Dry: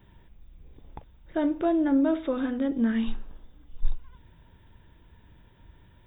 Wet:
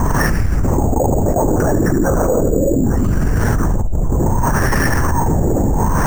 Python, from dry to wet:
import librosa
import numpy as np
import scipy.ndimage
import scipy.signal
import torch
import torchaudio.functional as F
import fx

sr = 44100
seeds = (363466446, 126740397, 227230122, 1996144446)

p1 = fx.highpass(x, sr, hz=96.0, slope=6)
p2 = fx.low_shelf(p1, sr, hz=220.0, db=5.0)
p3 = fx.filter_lfo_lowpass(p2, sr, shape='sine', hz=0.68, low_hz=540.0, high_hz=1900.0, q=3.4)
p4 = fx.air_absorb(p3, sr, metres=230.0)
p5 = p4 + fx.echo_feedback(p4, sr, ms=74, feedback_pct=55, wet_db=-9.5, dry=0)
p6 = fx.lpc_vocoder(p5, sr, seeds[0], excitation='whisper', order=8)
p7 = np.repeat(p6[::6], 6)[:len(p6)]
p8 = fx.env_flatten(p7, sr, amount_pct=100)
y = F.gain(torch.from_numpy(p8), 3.0).numpy()